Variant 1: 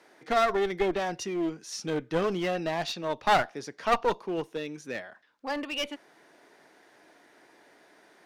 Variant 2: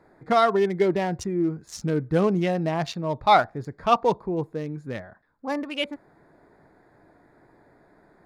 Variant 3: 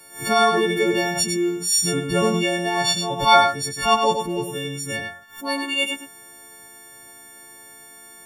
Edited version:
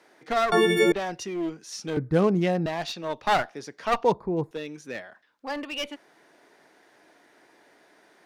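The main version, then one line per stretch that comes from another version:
1
0.52–0.92 s: from 3
1.97–2.66 s: from 2
4.04–4.51 s: from 2

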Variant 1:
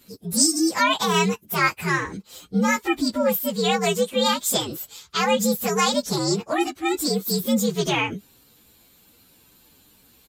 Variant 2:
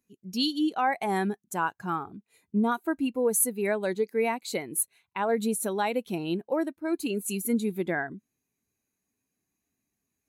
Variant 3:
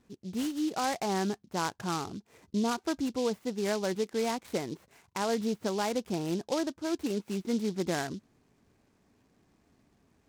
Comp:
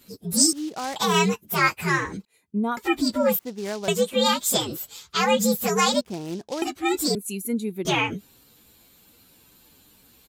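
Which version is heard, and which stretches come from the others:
1
0.53–0.96 s: from 3
2.25–2.77 s: from 2
3.39–3.88 s: from 3
6.01–6.62 s: from 3
7.15–7.85 s: from 2

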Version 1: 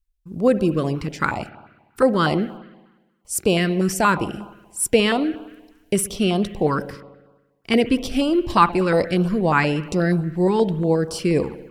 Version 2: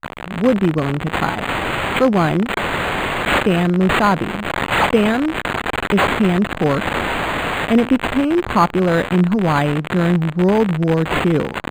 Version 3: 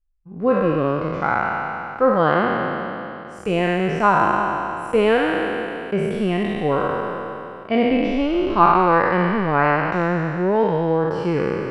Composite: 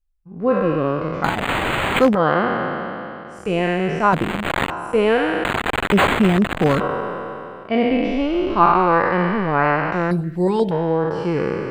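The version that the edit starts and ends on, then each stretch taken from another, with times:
3
1.24–2.15 s: from 2
4.13–4.70 s: from 2
5.44–6.80 s: from 2
10.11–10.71 s: from 1

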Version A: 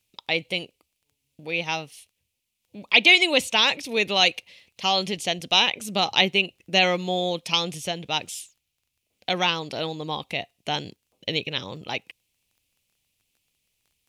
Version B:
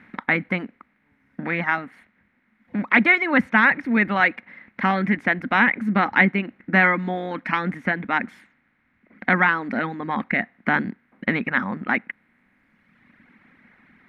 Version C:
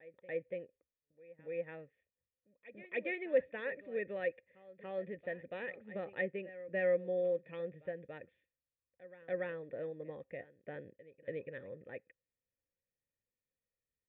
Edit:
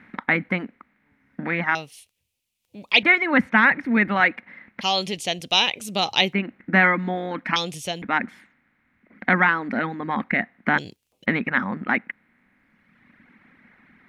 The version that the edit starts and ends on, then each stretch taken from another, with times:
B
1.75–3.03 s: from A
4.81–6.33 s: from A
7.56–8.02 s: from A
10.78–11.26 s: from A
not used: C

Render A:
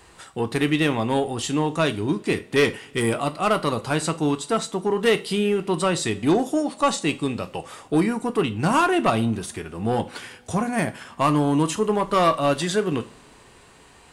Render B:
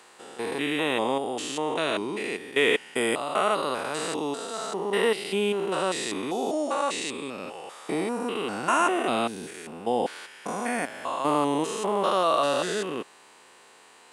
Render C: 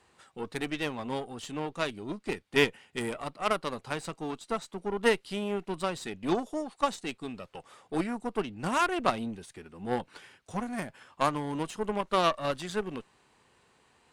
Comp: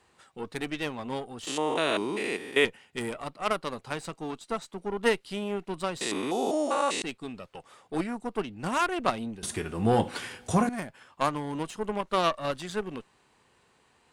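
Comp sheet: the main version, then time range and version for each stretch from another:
C
1.47–2.65 s: from B
6.01–7.02 s: from B
9.43–10.69 s: from A

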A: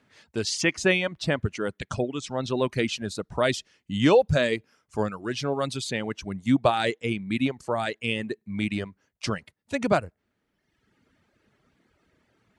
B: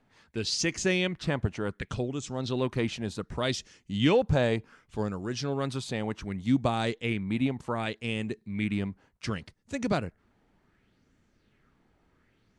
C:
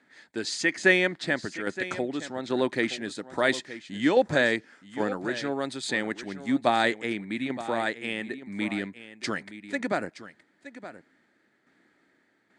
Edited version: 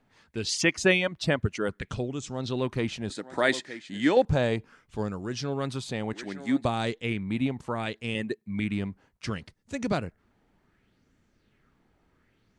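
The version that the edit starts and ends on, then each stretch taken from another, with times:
B
0.49–1.69 s: from A
3.10–4.25 s: from C
6.13–6.65 s: from C
8.15–8.60 s: from A

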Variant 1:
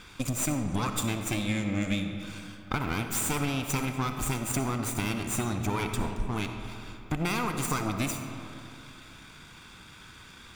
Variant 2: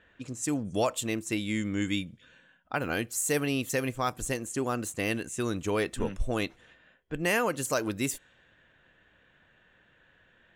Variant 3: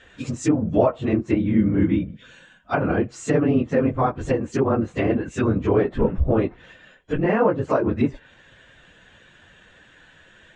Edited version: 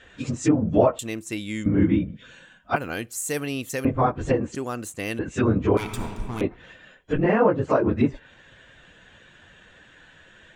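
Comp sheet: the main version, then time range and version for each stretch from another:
3
0.99–1.66 s: from 2
2.76–3.85 s: from 2
4.55–5.19 s: from 2
5.77–6.41 s: from 1

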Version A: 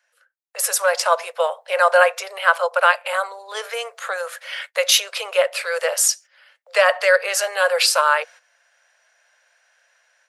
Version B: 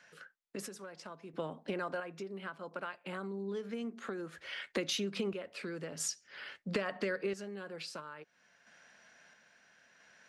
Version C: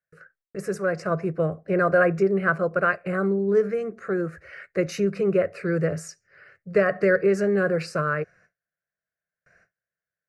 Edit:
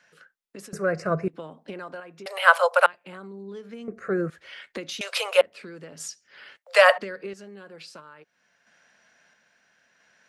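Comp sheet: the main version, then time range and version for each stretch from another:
B
0.73–1.28 s: from C
2.26–2.86 s: from A
3.88–4.30 s: from C
5.01–5.41 s: from A
6.57–6.98 s: from A

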